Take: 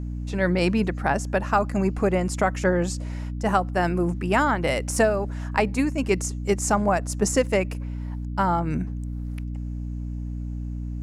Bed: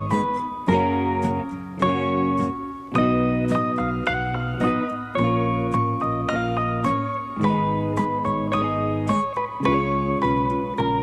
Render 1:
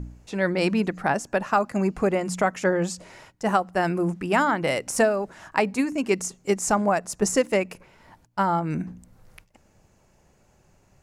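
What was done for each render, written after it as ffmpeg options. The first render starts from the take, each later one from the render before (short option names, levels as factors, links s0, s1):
-af "bandreject=f=60:t=h:w=4,bandreject=f=120:t=h:w=4,bandreject=f=180:t=h:w=4,bandreject=f=240:t=h:w=4,bandreject=f=300:t=h:w=4"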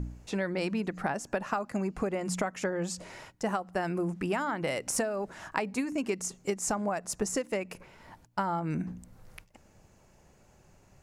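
-af "acompressor=threshold=0.0447:ratio=12"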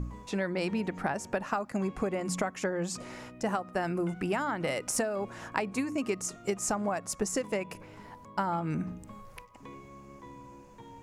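-filter_complex "[1:a]volume=0.0422[s0];[0:a][s0]amix=inputs=2:normalize=0"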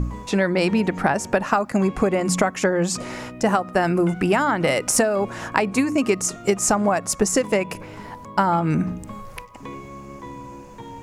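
-af "volume=3.76,alimiter=limit=0.708:level=0:latency=1"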